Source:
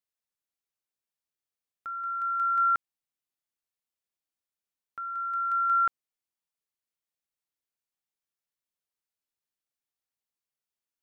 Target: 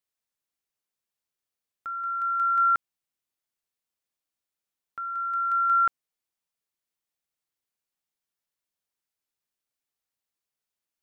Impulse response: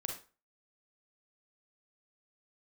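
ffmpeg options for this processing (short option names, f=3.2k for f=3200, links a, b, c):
-af "volume=2.5dB"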